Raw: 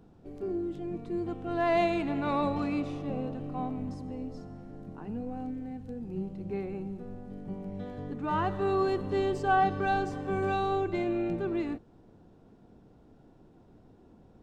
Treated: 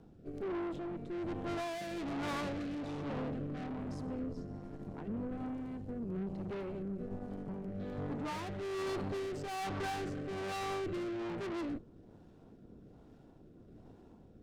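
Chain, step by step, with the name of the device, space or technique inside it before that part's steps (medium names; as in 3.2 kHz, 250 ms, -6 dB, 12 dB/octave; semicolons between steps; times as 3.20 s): overdriven rotary cabinet (valve stage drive 41 dB, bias 0.75; rotary cabinet horn 1.2 Hz); trim +6 dB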